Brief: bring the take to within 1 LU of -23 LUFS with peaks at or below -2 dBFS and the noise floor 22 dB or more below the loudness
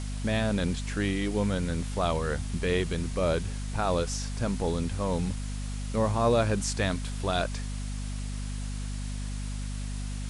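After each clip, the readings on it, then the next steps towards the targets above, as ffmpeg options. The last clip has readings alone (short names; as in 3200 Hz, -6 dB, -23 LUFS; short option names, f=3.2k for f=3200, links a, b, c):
hum 50 Hz; harmonics up to 250 Hz; hum level -31 dBFS; noise floor -34 dBFS; noise floor target -52 dBFS; loudness -30.0 LUFS; peak -12.5 dBFS; loudness target -23.0 LUFS
-> -af "bandreject=f=50:t=h:w=4,bandreject=f=100:t=h:w=4,bandreject=f=150:t=h:w=4,bandreject=f=200:t=h:w=4,bandreject=f=250:t=h:w=4"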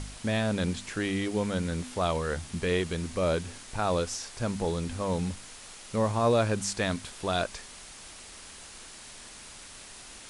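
hum none; noise floor -47 dBFS; noise floor target -52 dBFS
-> -af "afftdn=nr=6:nf=-47"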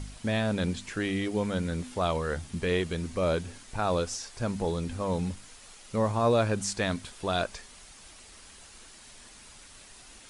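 noise floor -51 dBFS; noise floor target -52 dBFS
-> -af "afftdn=nr=6:nf=-51"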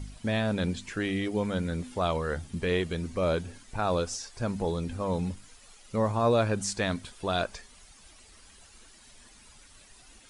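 noise floor -55 dBFS; loudness -30.0 LUFS; peak -13.5 dBFS; loudness target -23.0 LUFS
-> -af "volume=7dB"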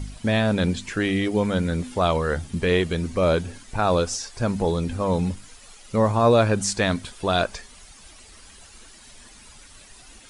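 loudness -23.0 LUFS; peak -6.5 dBFS; noise floor -48 dBFS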